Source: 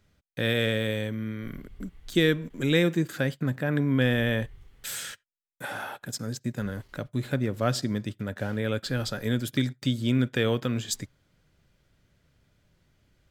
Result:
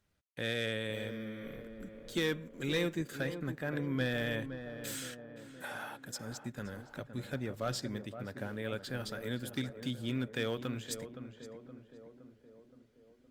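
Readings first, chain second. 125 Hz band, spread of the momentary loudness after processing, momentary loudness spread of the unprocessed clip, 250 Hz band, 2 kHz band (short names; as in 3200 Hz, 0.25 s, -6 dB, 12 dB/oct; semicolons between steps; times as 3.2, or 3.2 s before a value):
-12.0 dB, 15 LU, 14 LU, -10.5 dB, -8.0 dB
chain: low shelf 350 Hz -5.5 dB; short-mantissa float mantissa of 8-bit; hard clip -18 dBFS, distortion -19 dB; on a send: tape echo 0.518 s, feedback 67%, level -7 dB, low-pass 1200 Hz; on the sum: gain -7 dB; Opus 32 kbps 48000 Hz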